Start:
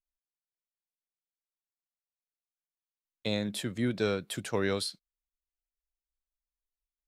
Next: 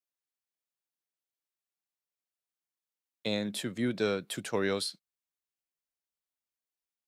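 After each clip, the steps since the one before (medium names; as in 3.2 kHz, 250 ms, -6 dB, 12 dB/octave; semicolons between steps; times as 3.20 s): high-pass 140 Hz 12 dB/octave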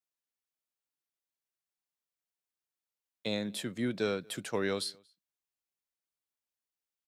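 echo from a far wall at 40 m, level -28 dB; trim -2 dB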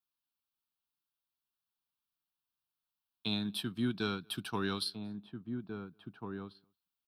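transient shaper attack 0 dB, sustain -4 dB; static phaser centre 2 kHz, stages 6; echo from a far wall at 290 m, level -6 dB; trim +3 dB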